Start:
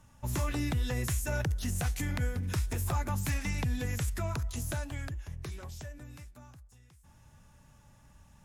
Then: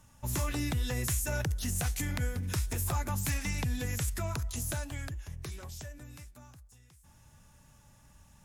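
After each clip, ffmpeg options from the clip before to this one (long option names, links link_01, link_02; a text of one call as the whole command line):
ffmpeg -i in.wav -af "highshelf=frequency=4100:gain=6.5,volume=-1dB" out.wav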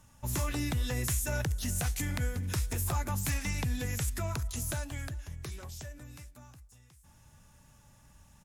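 ffmpeg -i in.wav -af "aecho=1:1:379:0.0841" out.wav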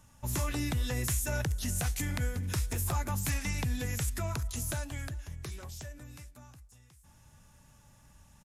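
ffmpeg -i in.wav -af "aresample=32000,aresample=44100" out.wav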